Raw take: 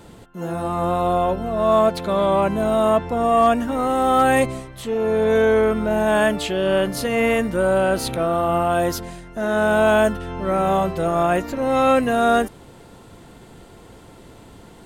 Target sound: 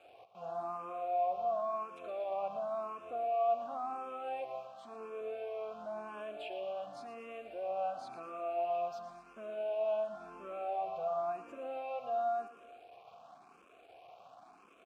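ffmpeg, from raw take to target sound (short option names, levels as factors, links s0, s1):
-filter_complex "[0:a]asettb=1/sr,asplit=3[s0][s1][s2];[s0]atrim=end=4.414[s3];[s1]atrim=start=4.41:end=5.21,asetpts=PTS-STARTPTS,afade=t=in:d=0.004:c=qsin,afade=t=out:st=0.796:d=0.004:c=qsin,highpass=160[s4];[s2]atrim=start=5.206[s5];[s3][s4]acrossfade=d=0.004:c1=hsin:c2=qsin[s6];[s6][s5]acrossfade=d=0.004:c1=qsin:c2=hsin,asettb=1/sr,asplit=3[s7][s8][s9];[s7]atrim=end=8.644[s10];[s8]atrim=start=8.64:end=10.36,asetpts=PTS-STARTPTS,afade=t=in:d=0.004:c=qsin,afade=t=out:st=1.716:d=0.004:c=qsin,aecho=1:1:5.1:0.51,atrim=end_sample=75852[s11];[s9]atrim=start=10.356[s12];[s10][s11]acrossfade=d=0.004:c1=hsin:c2=qsin[s13];[s13][s12]acrossfade=d=0.004:c1=qsin:c2=hsin,alimiter=limit=0.133:level=0:latency=1:release=158,asoftclip=type=tanh:threshold=0.0944,acrusher=bits=6:mix=0:aa=0.000001,asplit=3[s14][s15][s16];[s14]bandpass=f=730:t=q:w=8,volume=1[s17];[s15]bandpass=f=1090:t=q:w=8,volume=0.501[s18];[s16]bandpass=f=2440:t=q:w=8,volume=0.355[s19];[s17][s18][s19]amix=inputs=3:normalize=0,aecho=1:1:117|234|351|468|585|702|819:0.266|0.157|0.0926|0.0546|0.0322|0.019|0.0112,asplit=2[s20][s21];[s21]afreqshift=0.94[s22];[s20][s22]amix=inputs=2:normalize=1"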